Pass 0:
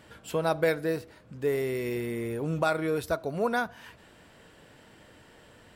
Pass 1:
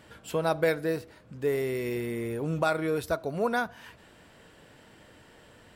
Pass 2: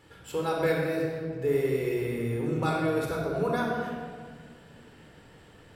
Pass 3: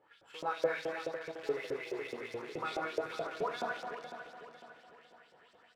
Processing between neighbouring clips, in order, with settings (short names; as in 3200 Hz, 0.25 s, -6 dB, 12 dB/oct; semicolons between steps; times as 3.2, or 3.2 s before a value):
nothing audible
shoebox room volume 2800 m³, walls mixed, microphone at 4.1 m; gain -6 dB
in parallel at -10 dB: bit-crush 5-bit; on the sum: LFO band-pass saw up 4.7 Hz 520–5800 Hz; feedback echo 0.502 s, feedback 42%, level -10.5 dB; gain -1.5 dB